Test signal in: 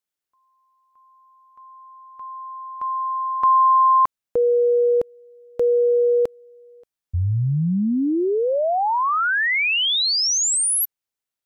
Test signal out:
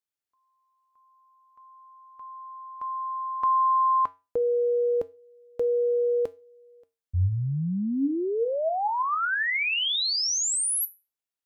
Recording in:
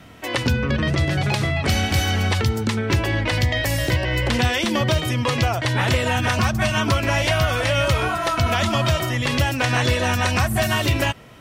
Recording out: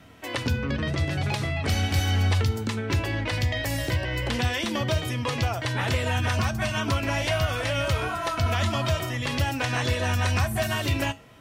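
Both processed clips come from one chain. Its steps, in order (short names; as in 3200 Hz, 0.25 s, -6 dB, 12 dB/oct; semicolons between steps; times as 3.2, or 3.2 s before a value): resonator 92 Hz, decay 0.28 s, harmonics odd, mix 60%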